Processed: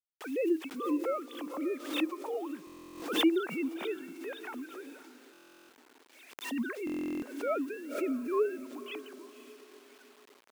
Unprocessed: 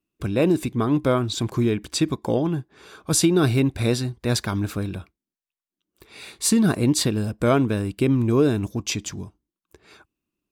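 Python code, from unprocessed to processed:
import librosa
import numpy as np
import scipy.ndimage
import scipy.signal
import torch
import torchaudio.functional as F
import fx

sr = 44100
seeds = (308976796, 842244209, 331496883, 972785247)

y = fx.sine_speech(x, sr)
y = fx.echo_diffused(y, sr, ms=525, feedback_pct=44, wet_db=-14.5)
y = fx.quant_dither(y, sr, seeds[0], bits=8, dither='none')
y = scipy.signal.sosfilt(scipy.signal.butter(2, 380.0, 'highpass', fs=sr, output='sos'), y)
y = fx.buffer_glitch(y, sr, at_s=(2.65, 5.32, 6.85), block=1024, repeats=15)
y = fx.pre_swell(y, sr, db_per_s=87.0)
y = y * librosa.db_to_amplitude(-9.0)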